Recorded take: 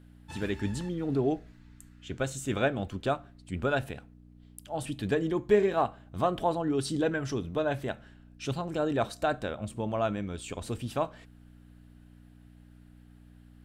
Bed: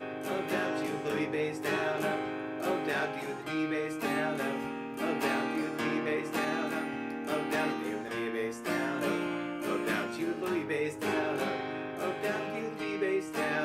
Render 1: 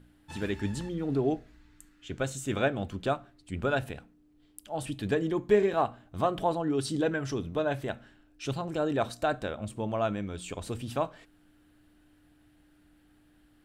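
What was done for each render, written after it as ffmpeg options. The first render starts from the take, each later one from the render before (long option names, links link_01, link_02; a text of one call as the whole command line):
ffmpeg -i in.wav -af "bandreject=frequency=60:width_type=h:width=4,bandreject=frequency=120:width_type=h:width=4,bandreject=frequency=180:width_type=h:width=4,bandreject=frequency=240:width_type=h:width=4" out.wav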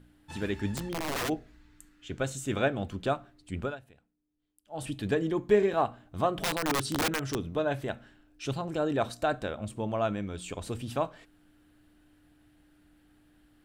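ffmpeg -i in.wav -filter_complex "[0:a]asplit=3[link_01][link_02][link_03];[link_01]afade=type=out:start_time=0.75:duration=0.02[link_04];[link_02]aeval=exprs='(mod(22.4*val(0)+1,2)-1)/22.4':channel_layout=same,afade=type=in:start_time=0.75:duration=0.02,afade=type=out:start_time=1.28:duration=0.02[link_05];[link_03]afade=type=in:start_time=1.28:duration=0.02[link_06];[link_04][link_05][link_06]amix=inputs=3:normalize=0,asettb=1/sr,asplit=3[link_07][link_08][link_09];[link_07]atrim=end=6.304[link_10];[link_08]atrim=start=6.3:end=7.42,asetpts=PTS-STARTPTS,afade=type=in:duration=0.004:curve=qsin,afade=type=out:start_time=1.116:duration=0.004:curve=qsin,aeval=exprs='(mod(14.1*val(0)+1,2)-1)/14.1':channel_layout=same[link_11];[link_09]atrim=start=7.416[link_12];[link_10][link_11]acrossfade=duration=0.004:curve1=hsin:curve2=qsin[link_13];[link_13][link_12]acrossfade=duration=0.004:curve1=qsin:curve2=hsin,asplit=3[link_14][link_15][link_16];[link_14]atrim=end=3.77,asetpts=PTS-STARTPTS,afade=type=out:start_time=3.59:duration=0.18:silence=0.112202[link_17];[link_15]atrim=start=3.77:end=4.66,asetpts=PTS-STARTPTS,volume=-19dB[link_18];[link_16]atrim=start=4.66,asetpts=PTS-STARTPTS,afade=type=in:duration=0.18:silence=0.112202[link_19];[link_17][link_18][link_19]concat=n=3:v=0:a=1" out.wav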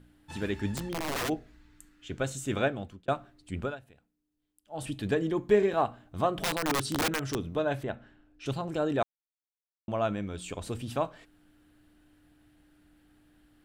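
ffmpeg -i in.wav -filter_complex "[0:a]asettb=1/sr,asplit=3[link_01][link_02][link_03];[link_01]atrim=end=7.834[link_04];[link_02]atrim=start=7.83:end=8.46,asetpts=PTS-STARTPTS,afade=type=in:duration=0.004:curve=qsin,afade=type=out:start_time=0.626:duration=0.004:curve=qsin,aemphasis=mode=reproduction:type=75kf[link_05];[link_03]atrim=start=8.456[link_06];[link_04][link_05]acrossfade=duration=0.004:curve1=hsin:curve2=qsin[link_07];[link_07][link_06]acrossfade=duration=0.004:curve1=qsin:curve2=hsin,asplit=4[link_08][link_09][link_10][link_11];[link_08]atrim=end=3.08,asetpts=PTS-STARTPTS,afade=type=out:start_time=2.62:duration=0.46[link_12];[link_09]atrim=start=3.08:end=9.03,asetpts=PTS-STARTPTS,afade=type=in:duration=0.004:curve=hsin,afade=type=out:start_time=5.946:duration=0.004:curve=hsin[link_13];[link_10]atrim=start=9.03:end=9.88,asetpts=PTS-STARTPTS,volume=0[link_14];[link_11]atrim=start=9.88,asetpts=PTS-STARTPTS,afade=type=in:duration=0.004:curve=hsin[link_15];[link_12][link_13][link_14][link_15]concat=n=4:v=0:a=1" out.wav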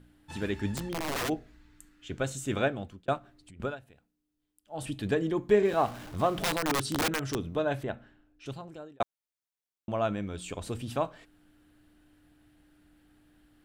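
ffmpeg -i in.wav -filter_complex "[0:a]asettb=1/sr,asplit=3[link_01][link_02][link_03];[link_01]atrim=end=3.184[link_04];[link_02]atrim=start=3.18:end=3.6,asetpts=PTS-STARTPTS,afade=type=in:duration=0.004:curve=qsin,afade=type=out:start_time=0.416:duration=0.004:curve=qsin,acompressor=threshold=-49dB:ratio=8:attack=3.2:release=140:knee=1:detection=peak[link_05];[link_03]atrim=start=3.596[link_06];[link_04][link_05]acrossfade=duration=0.004:curve1=hsin:curve2=qsin[link_07];[link_07][link_06]acrossfade=duration=0.004:curve1=qsin:curve2=hsin,asettb=1/sr,asplit=3[link_08][link_09][link_10];[link_08]atrim=end=5.654[link_11];[link_09]atrim=start=5.65:end=6.61,asetpts=PTS-STARTPTS,afade=type=in:duration=0.004:curve=qsin,afade=type=out:start_time=0.956:duration=0.004:curve=qsin,aeval=exprs='val(0)+0.5*0.01*sgn(val(0))':channel_layout=same[link_12];[link_10]atrim=start=6.606[link_13];[link_11][link_12]acrossfade=duration=0.004:curve1=hsin:curve2=qsin[link_14];[link_14][link_13]acrossfade=duration=0.004:curve1=qsin:curve2=hsin,asplit=2[link_15][link_16];[link_15]atrim=end=9,asetpts=PTS-STARTPTS,afade=type=out:start_time=7.94:duration=1.06[link_17];[link_16]atrim=start=9,asetpts=PTS-STARTPTS,afade=type=in:duration=0.004:curve=hsin[link_18];[link_17][link_18]concat=n=2:v=0:a=1" out.wav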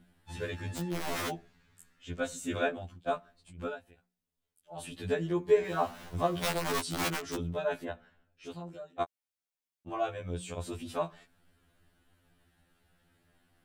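ffmpeg -i in.wav -filter_complex "[0:a]acrossover=split=630|4300[link_01][link_02][link_03];[link_01]crystalizer=i=2:c=0[link_04];[link_04][link_02][link_03]amix=inputs=3:normalize=0,afftfilt=real='re*2*eq(mod(b,4),0)':imag='im*2*eq(mod(b,4),0)':win_size=2048:overlap=0.75" out.wav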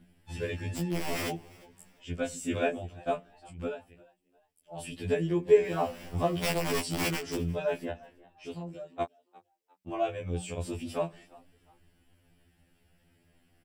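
ffmpeg -i in.wav -filter_complex "[0:a]asplit=2[link_01][link_02];[link_02]adelay=12,volume=-4dB[link_03];[link_01][link_03]amix=inputs=2:normalize=0,asplit=3[link_04][link_05][link_06];[link_05]adelay=351,afreqshift=93,volume=-23.5dB[link_07];[link_06]adelay=702,afreqshift=186,volume=-33.4dB[link_08];[link_04][link_07][link_08]amix=inputs=3:normalize=0" out.wav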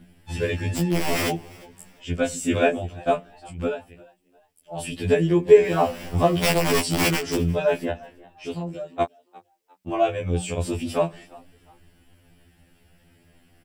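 ffmpeg -i in.wav -af "volume=9dB,alimiter=limit=-3dB:level=0:latency=1" out.wav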